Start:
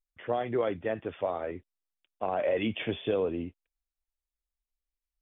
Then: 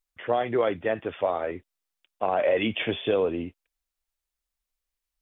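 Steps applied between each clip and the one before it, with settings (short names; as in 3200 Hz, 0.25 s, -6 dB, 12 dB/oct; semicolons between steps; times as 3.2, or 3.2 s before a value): low shelf 380 Hz -6 dB; gain +7 dB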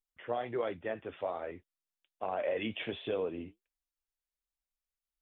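flange 1.3 Hz, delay 0.8 ms, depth 9 ms, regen -68%; gain -6 dB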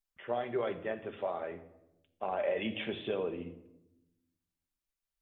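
shoebox room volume 3300 m³, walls furnished, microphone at 1.2 m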